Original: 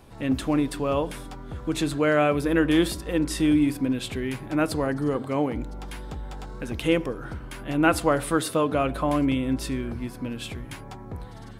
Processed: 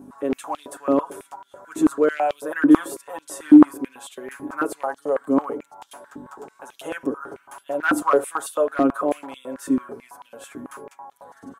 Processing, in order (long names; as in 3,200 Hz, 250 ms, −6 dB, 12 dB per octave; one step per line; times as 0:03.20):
comb filter 7.2 ms, depth 96%
mains hum 50 Hz, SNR 13 dB
flat-topped bell 3,100 Hz −13.5 dB
hard clipping −11 dBFS, distortion −25 dB
high-pass on a step sequencer 9.1 Hz 290–3,300 Hz
level −3.5 dB